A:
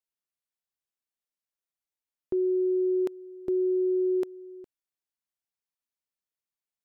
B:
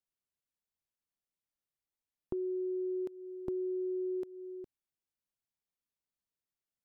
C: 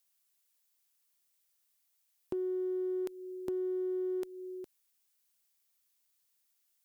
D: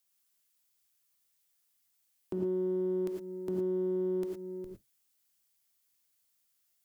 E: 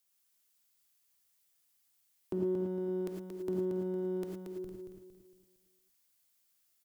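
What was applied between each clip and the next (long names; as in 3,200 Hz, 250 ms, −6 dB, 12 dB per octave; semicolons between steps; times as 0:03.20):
low-shelf EQ 370 Hz +10 dB; downward compressor 4 to 1, threshold −31 dBFS, peak gain reduction 10 dB; level −5 dB
spectral tilt +3.5 dB per octave; in parallel at −4 dB: asymmetric clip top −39 dBFS; on the sum: level +2 dB
sub-octave generator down 1 octave, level +1 dB; reverb whose tail is shaped and stops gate 130 ms rising, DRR 1.5 dB; level −1.5 dB
repeating echo 229 ms, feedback 39%, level −5.5 dB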